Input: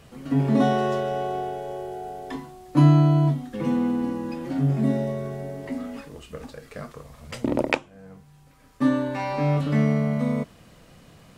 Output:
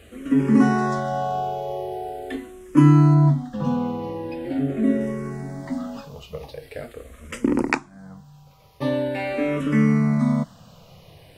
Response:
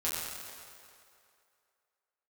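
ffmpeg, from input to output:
-filter_complex "[0:a]asettb=1/sr,asplit=3[a][b][c];[a]atrim=end=3.144[d];[b]atrim=start=3.14:end=5.01,asetpts=PTS-STARTPTS,afade=t=in:d=0.004:c=qsin,afade=t=out:st=1.866:d=0.004:c=qsin,highshelf=f=4.1k:g=-6.5[e];[c]atrim=start=5.006[f];[d][e]acrossfade=d=0.004:c1=hsin:c2=qsin[g];[g][f]acrossfade=d=0.004:c1=qsin:c2=hsin,asplit=2[h][i];[i]afreqshift=-0.43[j];[h][j]amix=inputs=2:normalize=1,volume=5.5dB"

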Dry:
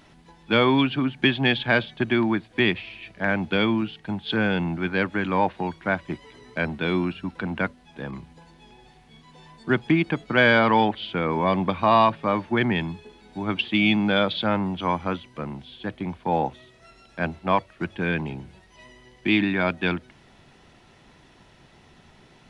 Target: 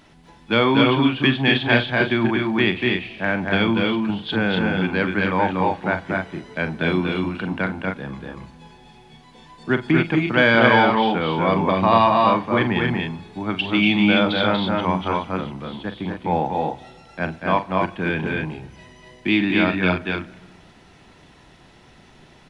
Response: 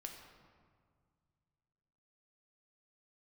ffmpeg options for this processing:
-filter_complex "[0:a]aecho=1:1:43.73|239.1|271.1:0.282|0.708|0.501,asplit=2[a][b];[1:a]atrim=start_sample=2205[c];[b][c]afir=irnorm=-1:irlink=0,volume=-11dB[d];[a][d]amix=inputs=2:normalize=0"

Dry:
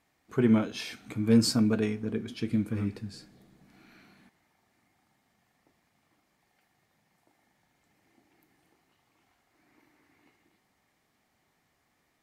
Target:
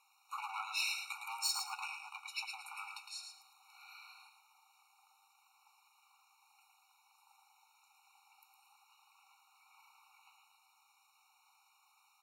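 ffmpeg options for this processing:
-filter_complex "[0:a]lowshelf=f=500:g=-7.5,acompressor=threshold=-33dB:ratio=3,asoftclip=type=hard:threshold=-33.5dB,bandreject=f=1.5k:w=6,asplit=2[a][b];[b]aecho=0:1:110|220|330:0.501|0.115|0.0265[c];[a][c]amix=inputs=2:normalize=0,afftfilt=real='re*eq(mod(floor(b*sr/1024/740),2),1)':imag='im*eq(mod(floor(b*sr/1024/740),2),1)':win_size=1024:overlap=0.75,volume=7.5dB"

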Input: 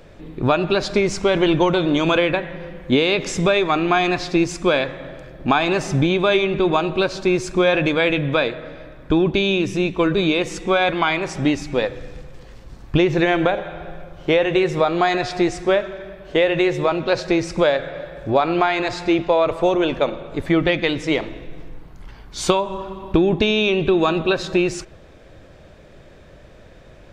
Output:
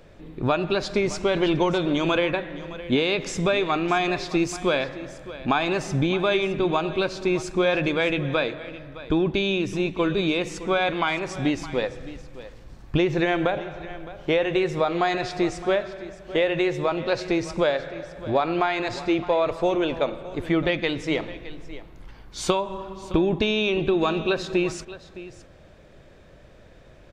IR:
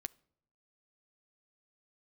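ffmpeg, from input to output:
-filter_complex "[0:a]asettb=1/sr,asplit=3[a][b][c];[a]atrim=end=4.294[d];[b]atrim=start=4.29:end=4.75,asetpts=PTS-STARTPTS,afade=t=in:d=0.004:c=qsin,afade=t=out:st=0.456:d=0.004:c=qsin,highshelf=f=7.8k:g=7[e];[c]atrim=start=4.746[f];[d][e]acrossfade=d=0.004:c1=hsin:c2=qsin[g];[g][f]acrossfade=d=0.004:c1=qsin:c2=hsin,aecho=1:1:614:0.158,volume=-5dB"

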